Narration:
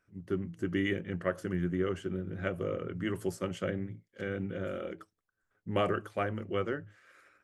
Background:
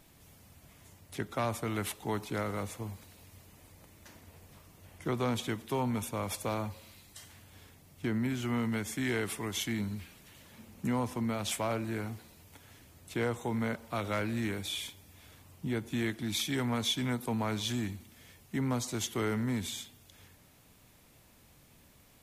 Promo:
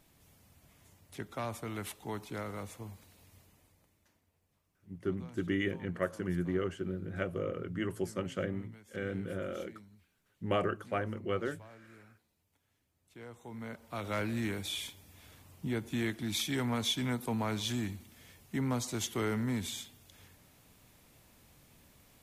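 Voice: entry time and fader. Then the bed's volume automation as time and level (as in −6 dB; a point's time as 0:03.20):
4.75 s, −1.5 dB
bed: 0:03.39 −5.5 dB
0:04.32 −22 dB
0:12.95 −22 dB
0:14.20 −1 dB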